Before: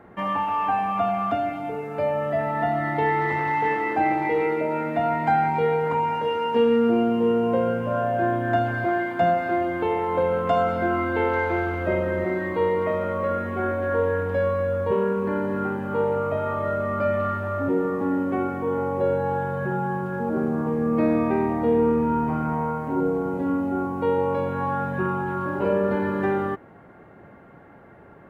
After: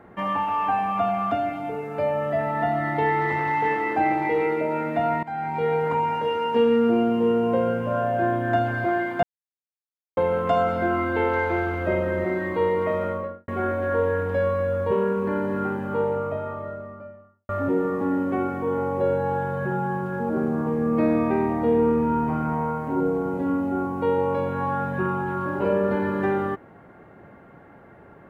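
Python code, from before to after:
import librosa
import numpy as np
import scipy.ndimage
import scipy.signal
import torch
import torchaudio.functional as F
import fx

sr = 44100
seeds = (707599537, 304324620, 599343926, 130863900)

y = fx.studio_fade_out(x, sr, start_s=13.04, length_s=0.44)
y = fx.studio_fade_out(y, sr, start_s=15.71, length_s=1.78)
y = fx.edit(y, sr, fx.fade_in_from(start_s=5.23, length_s=0.54, floor_db=-19.0),
    fx.silence(start_s=9.23, length_s=0.94), tone=tone)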